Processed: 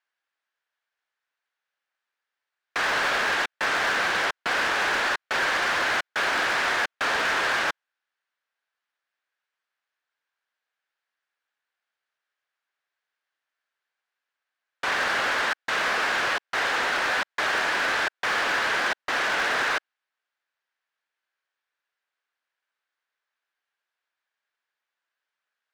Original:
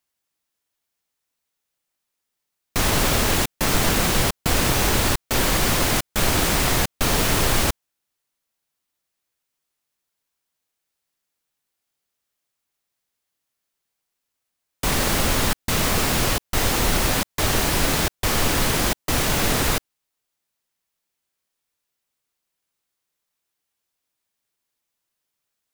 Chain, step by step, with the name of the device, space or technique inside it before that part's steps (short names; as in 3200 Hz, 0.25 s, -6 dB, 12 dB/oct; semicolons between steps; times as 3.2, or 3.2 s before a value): megaphone (BPF 610–3200 Hz; bell 1600 Hz +9 dB 0.46 oct; hard clip -20 dBFS, distortion -14 dB)